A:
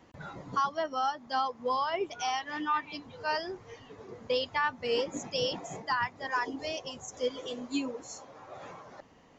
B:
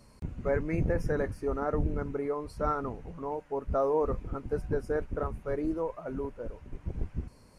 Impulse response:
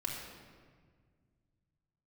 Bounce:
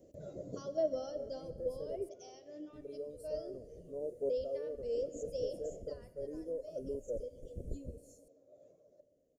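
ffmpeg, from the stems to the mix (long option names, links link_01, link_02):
-filter_complex "[0:a]volume=-6dB,afade=type=out:start_time=1.15:duration=0.33:silence=0.354813,afade=type=out:start_time=5.77:duration=0.77:silence=0.398107,asplit=3[link_01][link_02][link_03];[link_02]volume=-9dB[link_04];[1:a]agate=range=-33dB:threshold=-50dB:ratio=3:detection=peak,highshelf=frequency=6300:gain=8,adelay=700,volume=-6dB,asplit=3[link_05][link_06][link_07];[link_05]atrim=end=2.09,asetpts=PTS-STARTPTS,afade=type=out:start_time=2.086:duration=0.004:curve=hsin[link_08];[link_06]atrim=start=2.09:end=2.73,asetpts=PTS-STARTPTS,volume=0[link_09];[link_07]atrim=start=2.73,asetpts=PTS-STARTPTS,afade=type=in:duration=0.004:curve=hsin[link_10];[link_08][link_09][link_10]concat=n=3:v=0:a=1[link_11];[link_03]apad=whole_len=365192[link_12];[link_11][link_12]sidechaincompress=threshold=-56dB:ratio=5:attack=16:release=955[link_13];[2:a]atrim=start_sample=2205[link_14];[link_04][link_14]afir=irnorm=-1:irlink=0[link_15];[link_01][link_13][link_15]amix=inputs=3:normalize=0,firequalizer=gain_entry='entry(250,0);entry(590,12);entry(850,-26);entry(8000,7)':delay=0.05:min_phase=1"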